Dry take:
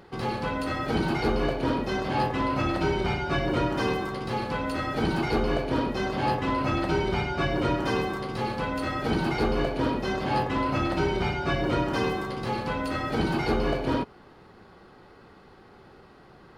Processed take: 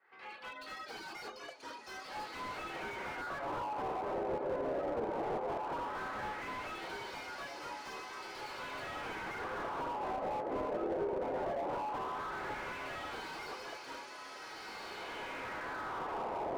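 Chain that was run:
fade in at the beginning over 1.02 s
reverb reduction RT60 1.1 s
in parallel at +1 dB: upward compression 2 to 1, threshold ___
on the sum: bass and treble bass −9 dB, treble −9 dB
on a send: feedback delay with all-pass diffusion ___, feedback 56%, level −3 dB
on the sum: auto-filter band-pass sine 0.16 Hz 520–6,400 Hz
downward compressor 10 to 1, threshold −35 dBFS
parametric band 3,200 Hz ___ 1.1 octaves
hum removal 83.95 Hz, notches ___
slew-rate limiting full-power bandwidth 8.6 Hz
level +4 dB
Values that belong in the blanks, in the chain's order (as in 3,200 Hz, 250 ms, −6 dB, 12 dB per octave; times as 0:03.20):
−45 dBFS, 1,448 ms, −7 dB, 3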